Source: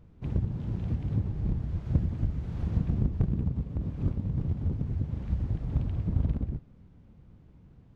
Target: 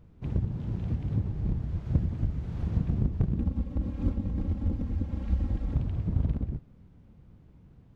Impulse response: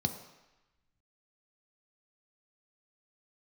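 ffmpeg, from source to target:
-filter_complex "[0:a]asettb=1/sr,asplit=3[s0][s1][s2];[s0]atrim=end=3.394[s3];[s1]atrim=start=3.39:end=5.74,asetpts=PTS-STARTPTS,afade=t=in:d=0.004:c=qsin,afade=t=out:st=2.346:d=0.004:c=qsin,aecho=1:1:3.7:0.96,atrim=end_sample=103635[s4];[s2]atrim=start=5.736[s5];[s3][s4]acrossfade=d=0.004:c1=hsin:c2=qsin[s6];[s6][s5]acrossfade=d=0.004:c1=qsin:c2=hsin"

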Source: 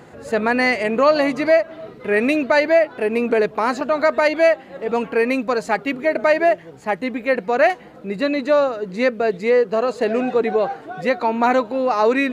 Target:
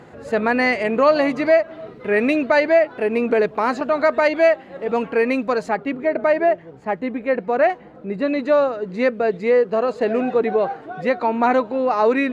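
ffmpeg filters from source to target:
-af "asetnsamples=n=441:p=0,asendcmd='5.69 lowpass f 1300;8.28 lowpass f 2600',lowpass=f=3800:p=1"

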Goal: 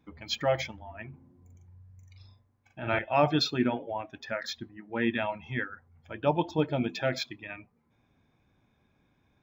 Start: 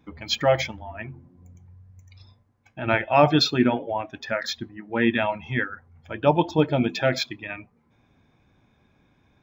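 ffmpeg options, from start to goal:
-filter_complex "[0:a]asettb=1/sr,asplit=3[s0][s1][s2];[s0]atrim=end=1.094[s3];[s1]atrim=start=1.09:end=2.99,asetpts=PTS-STARTPTS,afade=t=in:d=0.004:c=qsin,afade=t=out:st=1.896:d=0.004:c=qsin,asplit=2[s4][s5];[s5]adelay=42,volume=0.631[s6];[s4][s6]amix=inputs=2:normalize=0,atrim=end_sample=83790[s7];[s2]atrim=start=2.986[s8];[s3][s7]acrossfade=d=0.004:c1=hsin:c2=qsin[s9];[s9][s8]acrossfade=d=0.004:c1=qsin:c2=hsin,volume=0.447"

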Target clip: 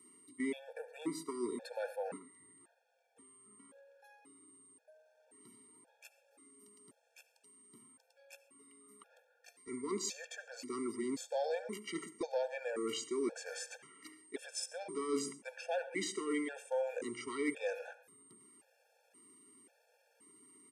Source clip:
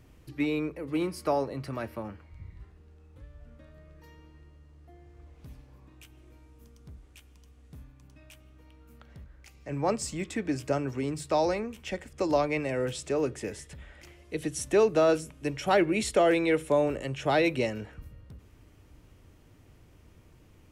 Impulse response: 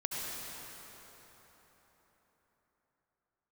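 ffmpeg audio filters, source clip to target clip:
-filter_complex "[0:a]asoftclip=type=tanh:threshold=0.141,areverse,acompressor=threshold=0.0141:ratio=10,areverse,highpass=f=300:w=0.5412,highpass=f=300:w=1.3066,aecho=1:1:74|148:0.0841|0.016,aeval=exprs='val(0)+0.00141*sin(2*PI*9700*n/s)':c=same,asetrate=39289,aresample=44100,atempo=1.12246,agate=range=0.398:threshold=0.00316:ratio=16:detection=peak,asplit=2[s0][s1];[1:a]atrim=start_sample=2205,atrim=end_sample=6174,lowshelf=f=490:g=10.5[s2];[s1][s2]afir=irnorm=-1:irlink=0,volume=0.211[s3];[s0][s3]amix=inputs=2:normalize=0,afftfilt=real='re*gt(sin(2*PI*0.94*pts/sr)*(1-2*mod(floor(b*sr/1024/460),2)),0)':imag='im*gt(sin(2*PI*0.94*pts/sr)*(1-2*mod(floor(b*sr/1024/460),2)),0)':win_size=1024:overlap=0.75,volume=1.58"

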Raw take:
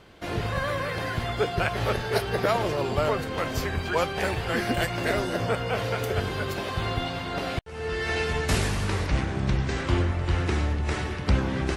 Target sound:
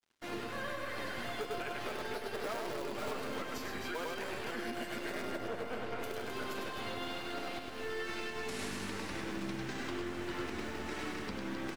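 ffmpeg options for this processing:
-filter_complex "[0:a]lowshelf=f=170:t=q:w=1.5:g=-13.5,acrossover=split=370|880[s0][s1][s2];[s1]acrusher=bits=5:dc=4:mix=0:aa=0.000001[s3];[s0][s3][s2]amix=inputs=3:normalize=0,flanger=delay=8.2:depth=1.1:regen=-44:speed=0.49:shape=triangular,aeval=exprs='sgn(val(0))*max(abs(val(0))-0.00211,0)':c=same,acompressor=threshold=0.0355:ratio=2.5,asettb=1/sr,asplit=3[s4][s5][s6];[s4]atrim=end=2.864[s7];[s5]atrim=start=2.86:end=3.42,asetpts=PTS-STARTPTS,afade=t=in:d=0.004:c=qsin,afade=t=out:st=0.556:d=0.004:c=qsin,volume=42.2,asoftclip=hard,volume=0.0237[s8];[s6]atrim=start=3.416[s9];[s7][s8]acrossfade=d=0.004:c1=hsin:c2=qsin[s10];[s10][s9]acrossfade=d=0.004:c1=qsin:c2=hsin,asettb=1/sr,asplit=3[s11][s12][s13];[s11]atrim=end=5.224[s14];[s12]atrim=start=5.22:end=6.03,asetpts=PTS-STARTPTS,afade=t=in:d=0.004:c=qsin,afade=t=out:st=0.806:d=0.004:c=qsin,lowpass=f=1700:p=1[s15];[s13]atrim=start=6.026[s16];[s14][s15]acrossfade=d=0.004:c1=hsin:c2=qsin[s17];[s17][s16]acrossfade=d=0.004:c1=qsin:c2=hsin,aecho=1:1:100|260|516|925.6|1581:0.631|0.398|0.251|0.158|0.1,alimiter=level_in=1.12:limit=0.0631:level=0:latency=1:release=190,volume=0.891,volume=0.668"

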